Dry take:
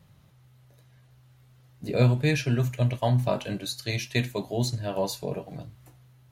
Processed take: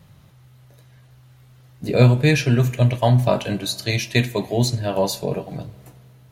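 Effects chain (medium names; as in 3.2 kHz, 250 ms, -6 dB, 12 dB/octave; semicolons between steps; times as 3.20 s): spring tank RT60 2.1 s, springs 51 ms, chirp 55 ms, DRR 19.5 dB; trim +7.5 dB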